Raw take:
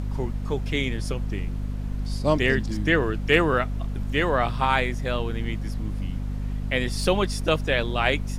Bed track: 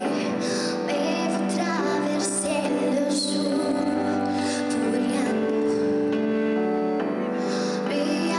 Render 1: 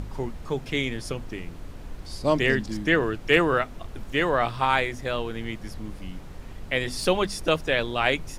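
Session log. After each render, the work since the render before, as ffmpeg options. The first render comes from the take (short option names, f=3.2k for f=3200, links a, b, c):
-af "bandreject=f=50:t=h:w=6,bandreject=f=100:t=h:w=6,bandreject=f=150:t=h:w=6,bandreject=f=200:t=h:w=6,bandreject=f=250:t=h:w=6"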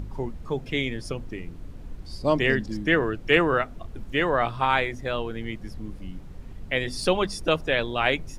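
-af "afftdn=nr=8:nf=-40"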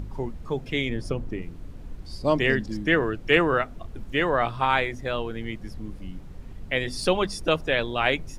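-filter_complex "[0:a]asettb=1/sr,asplit=3[a][b][c];[a]atrim=end=0.894[d];[b]atrim=start=0.89:end=1.42,asetpts=PTS-STARTPTS,afade=t=in:d=0.004:c=qsin,afade=t=out:st=0.526:d=0.004:c=qsin,tiltshelf=f=1.4k:g=4[e];[c]atrim=start=1.416[f];[d][e]acrossfade=d=0.004:c1=hsin:c2=qsin[g];[g][f]acrossfade=d=0.004:c1=qsin:c2=hsin"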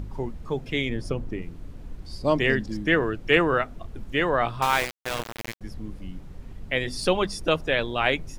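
-filter_complex "[0:a]asettb=1/sr,asplit=3[a][b][c];[a]atrim=end=4.624[d];[b]atrim=start=4.62:end=5.61,asetpts=PTS-STARTPTS,afade=t=in:d=0.004:c=qsin,afade=t=out:st=0.986:d=0.004:c=qsin,aeval=exprs='val(0)*gte(abs(val(0)),0.0631)':c=same[e];[c]atrim=start=5.606[f];[d][e]acrossfade=d=0.004:c1=hsin:c2=qsin[g];[g][f]acrossfade=d=0.004:c1=qsin:c2=hsin"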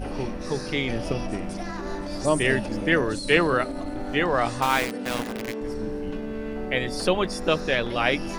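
-filter_complex "[1:a]volume=-9dB[a];[0:a][a]amix=inputs=2:normalize=0"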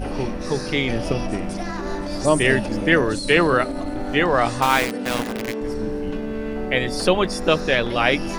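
-af "volume=4.5dB,alimiter=limit=-3dB:level=0:latency=1"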